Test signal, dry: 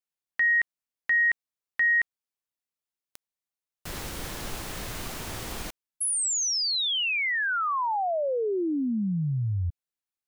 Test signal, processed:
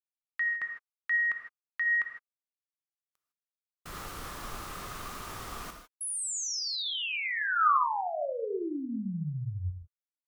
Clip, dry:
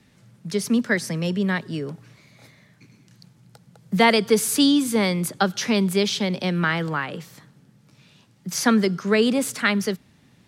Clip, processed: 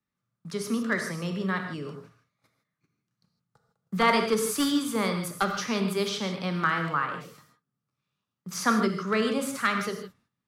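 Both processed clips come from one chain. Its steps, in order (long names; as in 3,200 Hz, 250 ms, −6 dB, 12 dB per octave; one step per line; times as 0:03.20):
wavefolder on the positive side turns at −11 dBFS
noise gate −46 dBFS, range −23 dB
parametric band 1,200 Hz +13 dB 0.46 octaves
pitch vibrato 1.1 Hz 6.7 cents
reverb whose tail is shaped and stops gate 180 ms flat, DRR 4 dB
level −8.5 dB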